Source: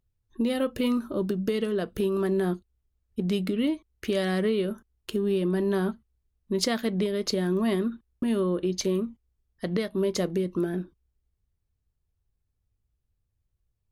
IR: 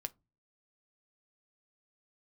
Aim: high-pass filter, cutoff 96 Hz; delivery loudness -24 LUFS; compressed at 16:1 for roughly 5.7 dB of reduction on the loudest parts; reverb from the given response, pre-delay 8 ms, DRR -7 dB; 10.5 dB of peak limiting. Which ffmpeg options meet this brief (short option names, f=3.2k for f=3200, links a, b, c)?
-filter_complex "[0:a]highpass=96,acompressor=threshold=-27dB:ratio=16,alimiter=level_in=1.5dB:limit=-24dB:level=0:latency=1,volume=-1.5dB,asplit=2[a][b];[1:a]atrim=start_sample=2205,adelay=8[c];[b][c]afir=irnorm=-1:irlink=0,volume=9dB[d];[a][d]amix=inputs=2:normalize=0,volume=3dB"